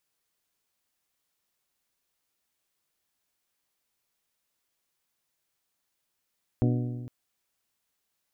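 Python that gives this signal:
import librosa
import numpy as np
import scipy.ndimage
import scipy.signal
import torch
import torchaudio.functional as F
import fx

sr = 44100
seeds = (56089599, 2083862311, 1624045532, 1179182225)

y = fx.strike_metal(sr, length_s=0.46, level_db=-21, body='bell', hz=122.0, decay_s=1.57, tilt_db=3.5, modes=7)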